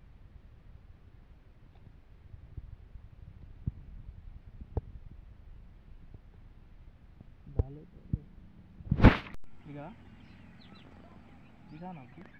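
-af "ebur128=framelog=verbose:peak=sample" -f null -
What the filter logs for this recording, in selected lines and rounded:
Integrated loudness:
  I:         -32.2 LUFS
  Threshold: -48.1 LUFS
Loudness range:
  LRA:        17.9 LU
  Threshold: -57.1 LUFS
  LRA low:   -50.1 LUFS
  LRA high:  -32.3 LUFS
Sample peak:
  Peak:       -3.5 dBFS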